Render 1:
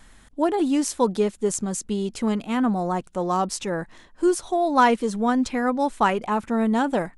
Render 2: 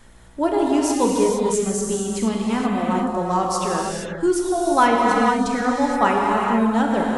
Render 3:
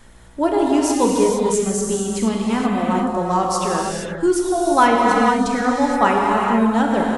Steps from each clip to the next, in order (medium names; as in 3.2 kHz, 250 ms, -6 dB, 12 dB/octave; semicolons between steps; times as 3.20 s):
reverb removal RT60 0.69 s; mains buzz 60 Hz, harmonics 27, -54 dBFS -5 dB/octave; gated-style reverb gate 500 ms flat, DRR -2.5 dB
delay 98 ms -22 dB; trim +2 dB